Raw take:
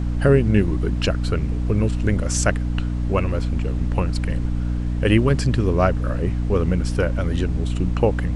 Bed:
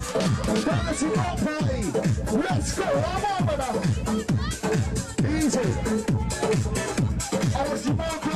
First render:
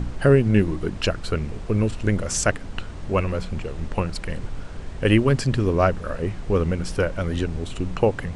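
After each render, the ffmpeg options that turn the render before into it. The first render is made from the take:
-af "bandreject=f=60:t=h:w=4,bandreject=f=120:t=h:w=4,bandreject=f=180:t=h:w=4,bandreject=f=240:t=h:w=4,bandreject=f=300:t=h:w=4"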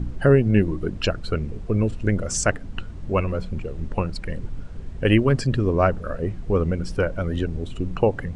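-af "afftdn=nr=10:nf=-34"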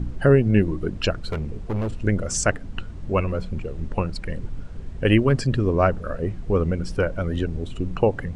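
-filter_complex "[0:a]asettb=1/sr,asplit=3[s0][s1][s2];[s0]atrim=end=1.134[s3];[s1]atrim=start=1.13:end=1.99,asetpts=PTS-STARTPTS,afade=t=in:d=0.004:c=qsin,afade=t=out:st=0.856:d=0.004:c=qsin,asoftclip=type=hard:threshold=0.0794[s4];[s2]atrim=start=1.986[s5];[s3][s4]acrossfade=d=0.004:c1=hsin:c2=qsin[s6];[s6][s5]acrossfade=d=0.004:c1=qsin:c2=hsin"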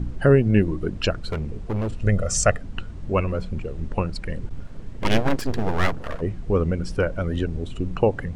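-filter_complex "[0:a]asettb=1/sr,asplit=3[s0][s1][s2];[s0]atrim=end=2.024[s3];[s1]atrim=start=2.02:end=2.61,asetpts=PTS-STARTPTS,afade=t=in:d=0.004:c=qsin,afade=t=out:st=0.586:d=0.004:c=qsin,aecho=1:1:1.6:0.65,atrim=end_sample=26019[s4];[s2]atrim=start=2.606[s5];[s3][s4]acrossfade=d=0.004:c1=hsin:c2=qsin[s6];[s6][s5]acrossfade=d=0.004:c1=qsin:c2=hsin,asplit=3[s7][s8][s9];[s7]afade=t=out:st=4.49:d=0.02[s10];[s8]aeval=exprs='abs(val(0))':c=same,afade=t=in:st=4.49:d=0.02,afade=t=out:st=6.2:d=0.02[s11];[s9]afade=t=in:st=6.2:d=0.02[s12];[s10][s11][s12]amix=inputs=3:normalize=0"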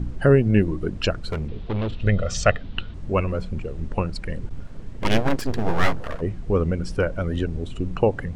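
-filter_complex "[0:a]asettb=1/sr,asplit=3[s0][s1][s2];[s0]atrim=end=1.484[s3];[s1]atrim=start=1.48:end=2.94,asetpts=PTS-STARTPTS,afade=t=in:d=0.004:c=qsin,afade=t=out:st=1.456:d=0.004:c=qsin,lowpass=f=3600:t=q:w=3.6[s4];[s2]atrim=start=2.936[s5];[s3][s4]acrossfade=d=0.004:c1=hsin:c2=qsin[s6];[s6][s5]acrossfade=d=0.004:c1=qsin:c2=hsin,asettb=1/sr,asplit=3[s7][s8][s9];[s7]atrim=end=5.634[s10];[s8]atrim=start=5.63:end=6.05,asetpts=PTS-STARTPTS,afade=t=in:d=0.004:c=qsin,afade=t=out:st=0.416:d=0.004:c=qsin,asplit=2[s11][s12];[s12]adelay=18,volume=0.631[s13];[s11][s13]amix=inputs=2:normalize=0,atrim=end_sample=18522[s14];[s9]atrim=start=6.046[s15];[s10][s14]acrossfade=d=0.004:c1=hsin:c2=qsin[s16];[s16][s15]acrossfade=d=0.004:c1=qsin:c2=hsin"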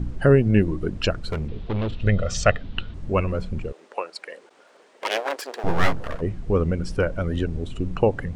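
-filter_complex "[0:a]asettb=1/sr,asplit=3[s0][s1][s2];[s0]atrim=end=3.724[s3];[s1]atrim=start=3.72:end=5.64,asetpts=PTS-STARTPTS,afade=t=in:d=0.004:c=qsin,afade=t=out:st=1.916:d=0.004:c=qsin,highpass=f=460:w=0.5412,highpass=f=460:w=1.3066[s4];[s2]atrim=start=5.636[s5];[s3][s4]acrossfade=d=0.004:c1=hsin:c2=qsin[s6];[s6][s5]acrossfade=d=0.004:c1=qsin:c2=hsin"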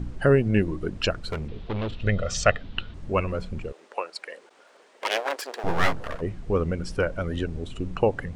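-af "lowshelf=f=420:g=-5"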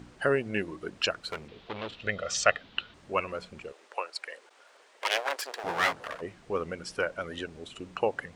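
-af "highpass=f=830:p=1"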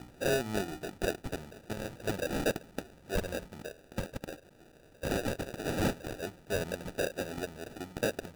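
-af "acrusher=samples=41:mix=1:aa=0.000001,asoftclip=type=tanh:threshold=0.0794"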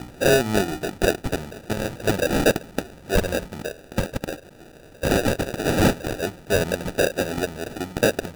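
-af "volume=3.98"

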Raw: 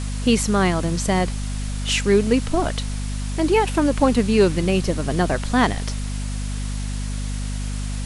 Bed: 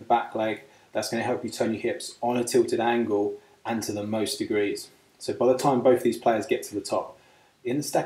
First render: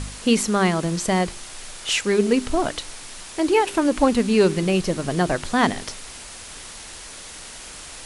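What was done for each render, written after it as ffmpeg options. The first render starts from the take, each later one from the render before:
-af "bandreject=f=50:t=h:w=4,bandreject=f=100:t=h:w=4,bandreject=f=150:t=h:w=4,bandreject=f=200:t=h:w=4,bandreject=f=250:t=h:w=4,bandreject=f=300:t=h:w=4,bandreject=f=350:t=h:w=4,bandreject=f=400:t=h:w=4"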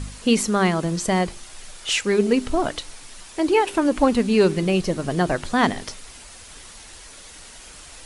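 -af "afftdn=nr=6:nf=-39"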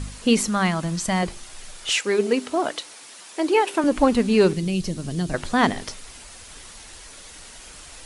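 -filter_complex "[0:a]asettb=1/sr,asplit=3[s0][s1][s2];[s0]atrim=end=0.484[s3];[s1]atrim=start=0.48:end=1.23,asetpts=PTS-STARTPTS,afade=t=in:d=0.004:c=qsin,afade=t=out:st=0.746:d=0.004:c=qsin,equalizer=f=420:w=2.2:g=-14[s4];[s2]atrim=start=1.226[s5];[s3][s4]acrossfade=d=0.004:c1=hsin:c2=qsin[s6];[s6][s5]acrossfade=d=0.004:c1=qsin:c2=hsin,asettb=1/sr,asplit=3[s7][s8][s9];[s7]atrim=end=1.914[s10];[s8]atrim=start=1.91:end=3.84,asetpts=PTS-STARTPTS,afade=t=in:d=0.004:c=qsin,afade=t=out:st=1.926:d=0.004:c=qsin,highpass=290[s11];[s9]atrim=start=3.836[s12];[s10][s11]acrossfade=d=0.004:c1=hsin:c2=qsin[s13];[s13][s12]acrossfade=d=0.004:c1=qsin:c2=hsin,asettb=1/sr,asplit=3[s14][s15][s16];[s14]atrim=end=4.534[s17];[s15]atrim=start=4.53:end=5.34,asetpts=PTS-STARTPTS,afade=t=in:d=0.004:c=qsin,afade=t=out:st=0.806:d=0.004:c=qsin,acrossover=split=270|3000[s18][s19][s20];[s19]acompressor=threshold=0.00708:ratio=2.5:attack=3.2:release=140:knee=2.83:detection=peak[s21];[s18][s21][s20]amix=inputs=3:normalize=0[s22];[s16]atrim=start=5.336[s23];[s17][s22]acrossfade=d=0.004:c1=hsin:c2=qsin[s24];[s24][s23]acrossfade=d=0.004:c1=qsin:c2=hsin"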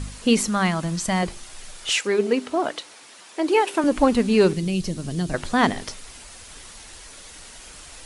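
-filter_complex "[0:a]asettb=1/sr,asplit=3[s0][s1][s2];[s0]atrim=end=2.074[s3];[s1]atrim=start=2.07:end=3.48,asetpts=PTS-STARTPTS,afade=t=in:d=0.004:c=qsin,afade=t=out:st=1.406:d=0.004:c=qsin,highshelf=f=5400:g=-7[s4];[s2]atrim=start=3.476[s5];[s3][s4]acrossfade=d=0.004:c1=hsin:c2=qsin[s6];[s6][s5]acrossfade=d=0.004:c1=qsin:c2=hsin"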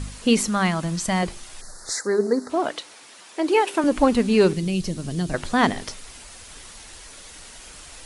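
-filter_complex "[0:a]asettb=1/sr,asplit=3[s0][s1][s2];[s0]atrim=end=1.614[s3];[s1]atrim=start=1.61:end=2.5,asetpts=PTS-STARTPTS,afade=t=in:d=0.004:c=qsin,afade=t=out:st=0.886:d=0.004:c=qsin,asuperstop=centerf=2800:order=8:qfactor=1.2[s4];[s2]atrim=start=2.496[s5];[s3][s4]acrossfade=d=0.004:c1=hsin:c2=qsin[s6];[s6][s5]acrossfade=d=0.004:c1=qsin:c2=hsin"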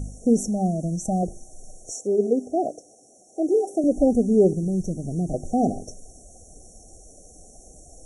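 -af "afftfilt=real='re*(1-between(b*sr/4096,790,5500))':imag='im*(1-between(b*sr/4096,790,5500))':win_size=4096:overlap=0.75,highshelf=f=7500:g=-11"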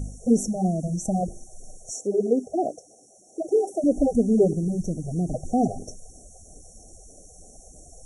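-af "afftfilt=real='re*(1-between(b*sr/1024,240*pow(3000/240,0.5+0.5*sin(2*PI*3.1*pts/sr))/1.41,240*pow(3000/240,0.5+0.5*sin(2*PI*3.1*pts/sr))*1.41))':imag='im*(1-between(b*sr/1024,240*pow(3000/240,0.5+0.5*sin(2*PI*3.1*pts/sr))/1.41,240*pow(3000/240,0.5+0.5*sin(2*PI*3.1*pts/sr))*1.41))':win_size=1024:overlap=0.75"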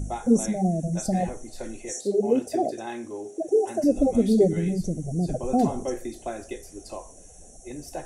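-filter_complex "[1:a]volume=0.282[s0];[0:a][s0]amix=inputs=2:normalize=0"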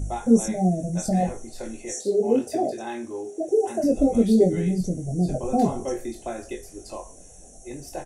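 -filter_complex "[0:a]asplit=2[s0][s1];[s1]adelay=22,volume=0.562[s2];[s0][s2]amix=inputs=2:normalize=0"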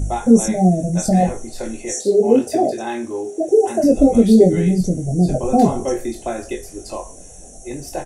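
-af "volume=2.37,alimiter=limit=0.891:level=0:latency=1"

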